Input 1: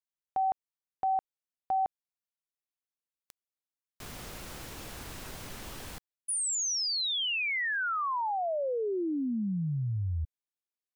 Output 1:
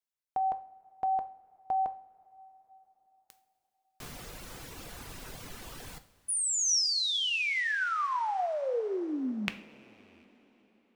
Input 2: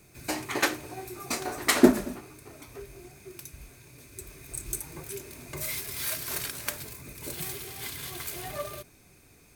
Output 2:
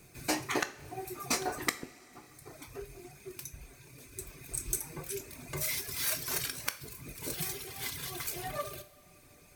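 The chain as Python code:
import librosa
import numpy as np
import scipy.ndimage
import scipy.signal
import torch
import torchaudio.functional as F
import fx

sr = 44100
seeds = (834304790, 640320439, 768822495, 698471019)

y = fx.rattle_buzz(x, sr, strikes_db=-31.0, level_db=-9.0)
y = fx.dereverb_blind(y, sr, rt60_s=0.9)
y = fx.dynamic_eq(y, sr, hz=5700.0, q=4.7, threshold_db=-54.0, ratio=4.0, max_db=5)
y = fx.gate_flip(y, sr, shuts_db=-13.0, range_db=-39)
y = fx.rev_double_slope(y, sr, seeds[0], early_s=0.41, late_s=4.5, knee_db=-20, drr_db=8.5)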